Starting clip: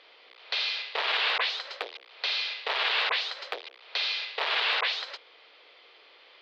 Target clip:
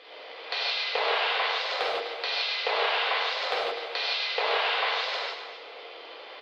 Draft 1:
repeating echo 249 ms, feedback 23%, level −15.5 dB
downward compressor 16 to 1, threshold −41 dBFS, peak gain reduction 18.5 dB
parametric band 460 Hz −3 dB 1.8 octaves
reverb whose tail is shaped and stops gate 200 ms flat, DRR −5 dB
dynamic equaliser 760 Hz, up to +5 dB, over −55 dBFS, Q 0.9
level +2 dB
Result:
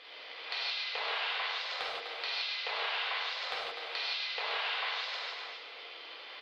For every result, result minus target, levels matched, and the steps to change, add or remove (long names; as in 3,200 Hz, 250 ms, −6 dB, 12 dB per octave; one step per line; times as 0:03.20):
500 Hz band −6.0 dB; downward compressor: peak gain reduction +6 dB
change: parametric band 460 Hz +6 dB 1.8 octaves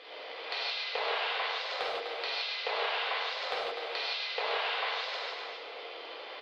downward compressor: peak gain reduction +6 dB
change: downward compressor 16 to 1, threshold −34.5 dBFS, peak gain reduction 12 dB